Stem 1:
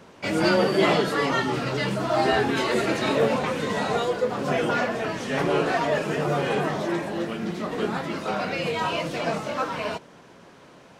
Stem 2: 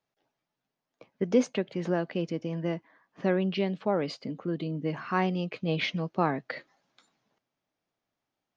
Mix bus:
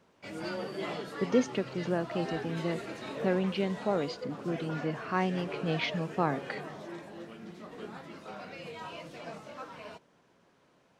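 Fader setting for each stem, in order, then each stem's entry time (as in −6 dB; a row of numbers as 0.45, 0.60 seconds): −16.5, −2.5 decibels; 0.00, 0.00 seconds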